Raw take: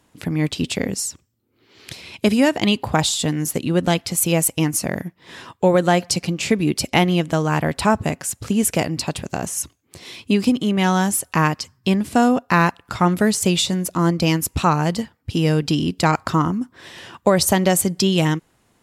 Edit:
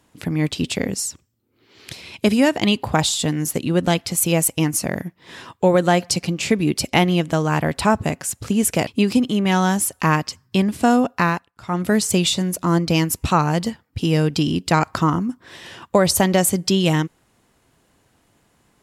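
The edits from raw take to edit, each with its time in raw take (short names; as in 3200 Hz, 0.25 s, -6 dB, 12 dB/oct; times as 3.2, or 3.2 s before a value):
8.87–10.19 cut
12.46–13.27 dip -20.5 dB, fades 0.38 s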